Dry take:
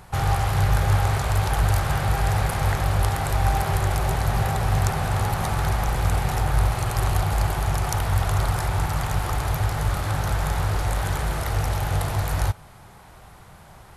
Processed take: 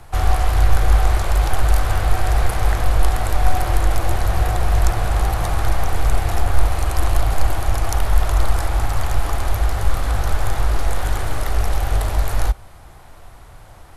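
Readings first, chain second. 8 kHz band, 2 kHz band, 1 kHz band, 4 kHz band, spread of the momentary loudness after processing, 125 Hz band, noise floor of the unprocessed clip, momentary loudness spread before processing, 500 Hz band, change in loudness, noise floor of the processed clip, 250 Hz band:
+1.5 dB, +1.0 dB, +1.0 dB, +1.5 dB, 5 LU, +0.5 dB, -47 dBFS, 4 LU, +2.5 dB, +2.5 dB, -41 dBFS, -1.0 dB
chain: frequency shift -49 Hz; bass shelf 86 Hz +8 dB; trim +1.5 dB

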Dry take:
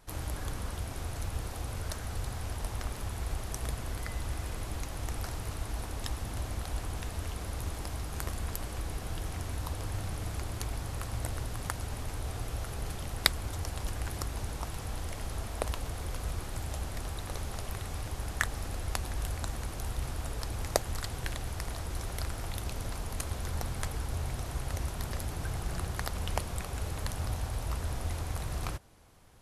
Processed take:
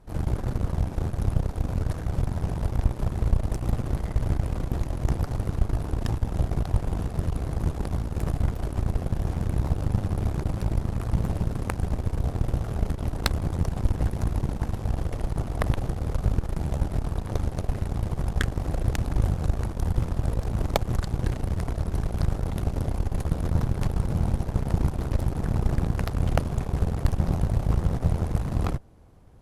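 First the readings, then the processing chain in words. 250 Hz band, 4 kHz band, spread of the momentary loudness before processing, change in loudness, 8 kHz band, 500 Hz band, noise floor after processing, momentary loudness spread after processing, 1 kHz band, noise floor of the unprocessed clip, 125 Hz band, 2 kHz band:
+13.0 dB, -3.0 dB, 3 LU, +9.0 dB, -5.5 dB, +7.5 dB, -34 dBFS, 3 LU, +4.0 dB, -40 dBFS, +11.0 dB, -0.5 dB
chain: tilt shelf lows +8.5 dB; Chebyshev shaper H 8 -11 dB, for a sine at -5 dBFS; loudspeaker Doppler distortion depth 0.42 ms

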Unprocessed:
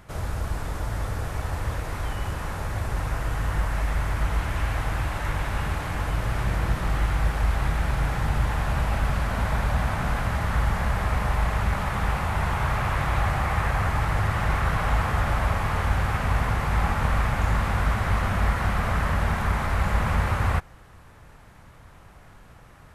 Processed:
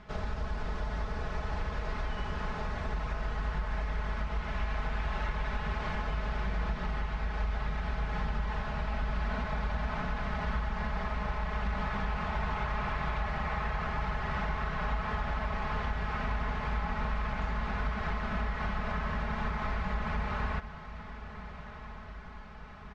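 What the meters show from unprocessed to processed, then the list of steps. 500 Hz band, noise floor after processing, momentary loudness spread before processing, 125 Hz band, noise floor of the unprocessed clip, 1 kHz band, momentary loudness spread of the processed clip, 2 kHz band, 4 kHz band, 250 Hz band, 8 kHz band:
-6.5 dB, -45 dBFS, 6 LU, -11.0 dB, -49 dBFS, -7.5 dB, 4 LU, -7.5 dB, -8.0 dB, -6.5 dB, under -15 dB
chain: low-pass 5.2 kHz 24 dB/octave; comb 4.7 ms, depth 76%; compression, threshold -26 dBFS, peak gain reduction 10 dB; echo that smears into a reverb 1391 ms, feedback 55%, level -13 dB; trim -3.5 dB

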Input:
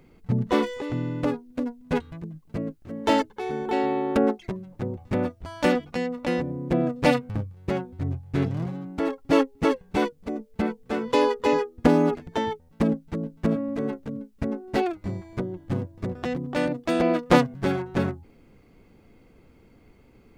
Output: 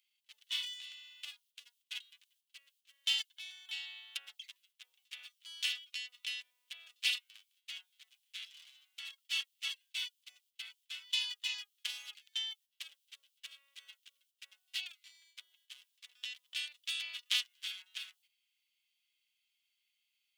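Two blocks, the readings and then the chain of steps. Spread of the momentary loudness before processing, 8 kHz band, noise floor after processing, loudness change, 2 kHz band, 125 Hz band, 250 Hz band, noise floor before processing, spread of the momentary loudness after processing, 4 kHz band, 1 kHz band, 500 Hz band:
11 LU, -1.0 dB, -83 dBFS, -13.0 dB, -9.5 dB, under -40 dB, under -40 dB, -56 dBFS, 23 LU, +3.0 dB, -36.5 dB, under -40 dB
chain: gate -43 dBFS, range -9 dB; ladder high-pass 2.8 kHz, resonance 65%; treble shelf 5 kHz +10.5 dB; trim +1.5 dB

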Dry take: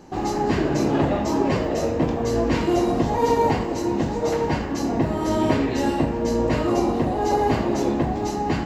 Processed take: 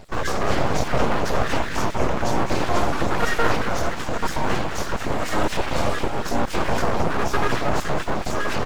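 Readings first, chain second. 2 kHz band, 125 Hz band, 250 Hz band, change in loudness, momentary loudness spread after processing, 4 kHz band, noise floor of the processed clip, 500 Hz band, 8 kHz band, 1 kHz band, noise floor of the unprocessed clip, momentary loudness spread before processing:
+7.0 dB, -1.5 dB, -6.5 dB, -2.0 dB, 4 LU, +4.5 dB, -29 dBFS, -3.0 dB, +3.0 dB, +0.5 dB, -27 dBFS, 4 LU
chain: random holes in the spectrogram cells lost 29%; in parallel at -0.5 dB: peak limiter -20 dBFS, peak gain reduction 11 dB; on the sum: frequency-shifting echo 219 ms, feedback 44%, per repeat +99 Hz, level -9 dB; full-wave rectifier

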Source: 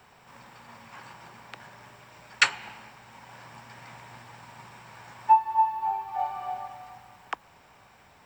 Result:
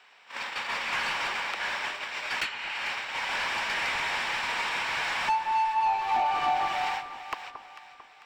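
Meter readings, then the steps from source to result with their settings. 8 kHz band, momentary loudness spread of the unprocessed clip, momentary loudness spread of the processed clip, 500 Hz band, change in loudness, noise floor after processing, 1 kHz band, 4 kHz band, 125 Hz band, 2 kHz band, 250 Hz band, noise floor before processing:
+0.5 dB, 24 LU, 11 LU, +8.0 dB, -2.0 dB, -54 dBFS, 0.0 dB, +5.0 dB, -2.0 dB, +5.5 dB, no reading, -57 dBFS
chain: frequency weighting D; gate -45 dBFS, range -22 dB; bass shelf 160 Hz -12 dB; compression 5:1, threshold -37 dBFS, peak gain reduction 27.5 dB; overdrive pedal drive 28 dB, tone 2.1 kHz, clips at -16 dBFS; echo whose repeats swap between lows and highs 223 ms, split 1.3 kHz, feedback 64%, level -9 dB; trim -1 dB

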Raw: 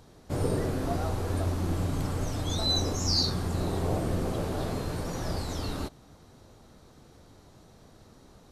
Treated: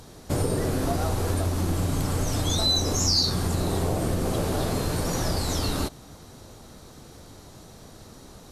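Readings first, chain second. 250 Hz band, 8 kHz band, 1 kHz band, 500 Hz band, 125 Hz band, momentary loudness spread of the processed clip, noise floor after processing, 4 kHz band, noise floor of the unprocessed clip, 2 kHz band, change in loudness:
+4.0 dB, +9.0 dB, +4.5 dB, +4.0 dB, +4.0 dB, 6 LU, -48 dBFS, +5.0 dB, -56 dBFS, +5.5 dB, +4.5 dB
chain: compression, threshold -29 dBFS, peak gain reduction 7.5 dB; peaking EQ 12 kHz +7 dB 2.1 oct; trim +7.5 dB

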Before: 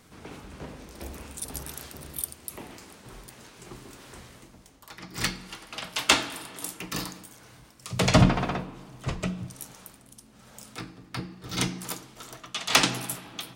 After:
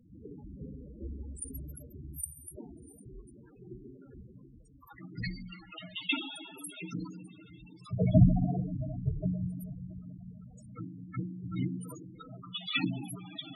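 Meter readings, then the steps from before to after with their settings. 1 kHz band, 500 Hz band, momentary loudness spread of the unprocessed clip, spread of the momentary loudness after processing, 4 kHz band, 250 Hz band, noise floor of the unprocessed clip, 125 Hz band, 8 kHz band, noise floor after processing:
-16.0 dB, -8.0 dB, 24 LU, 19 LU, -11.0 dB, -1.5 dB, -54 dBFS, -0.5 dB, -14.0 dB, -56 dBFS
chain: dynamic bell 1 kHz, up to -3 dB, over -43 dBFS, Q 1.5; saturation -9 dBFS, distortion -19 dB; echo that smears into a reverb 699 ms, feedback 45%, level -15 dB; Schroeder reverb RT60 1.8 s, combs from 30 ms, DRR 9 dB; loudest bins only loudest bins 8

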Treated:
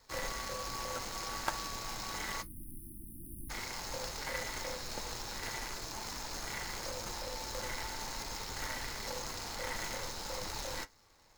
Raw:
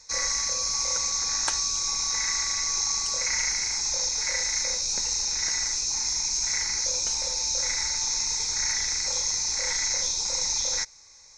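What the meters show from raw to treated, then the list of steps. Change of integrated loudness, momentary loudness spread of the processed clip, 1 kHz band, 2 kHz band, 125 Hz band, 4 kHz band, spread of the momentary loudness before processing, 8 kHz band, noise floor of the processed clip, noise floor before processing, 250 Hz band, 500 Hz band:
-15.5 dB, 4 LU, -2.0 dB, -8.0 dB, 0.0 dB, -16.0 dB, 1 LU, -20.5 dB, -62 dBFS, -51 dBFS, +3.0 dB, -0.5 dB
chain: median filter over 15 samples; spectral selection erased 2.42–3.50 s, 350–9100 Hz; flange 0.24 Hz, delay 7.3 ms, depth 2.1 ms, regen -60%; trim +3 dB

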